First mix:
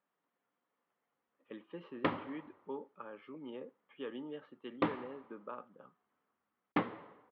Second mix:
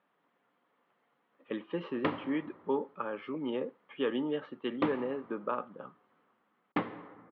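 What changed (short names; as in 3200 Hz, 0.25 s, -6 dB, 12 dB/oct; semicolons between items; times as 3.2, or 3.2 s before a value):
speech +11.5 dB; reverb: on, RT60 2.5 s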